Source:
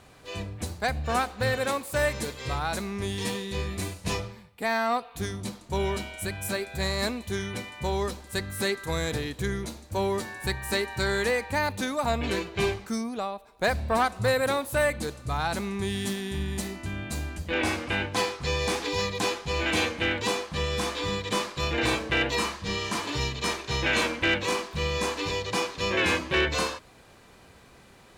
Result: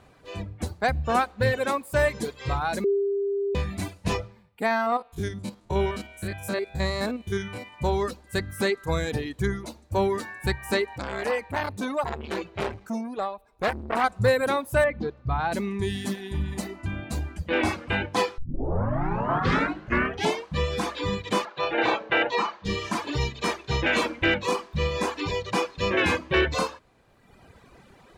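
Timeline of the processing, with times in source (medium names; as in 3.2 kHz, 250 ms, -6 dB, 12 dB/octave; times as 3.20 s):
2.84–3.55 s: bleep 399 Hz -23 dBFS
4.66–7.74 s: spectrogram pixelated in time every 50 ms
10.85–14.04 s: transformer saturation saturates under 1.4 kHz
14.84–15.52 s: distance through air 240 m
18.38 s: tape start 2.18 s
21.45–22.65 s: cabinet simulation 260–5500 Hz, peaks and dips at 260 Hz -5 dB, 580 Hz +4 dB, 840 Hz +6 dB, 1.4 kHz +4 dB, 5.1 kHz -6 dB
whole clip: reverb removal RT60 1.3 s; treble shelf 2.8 kHz -9 dB; level rider gain up to 5 dB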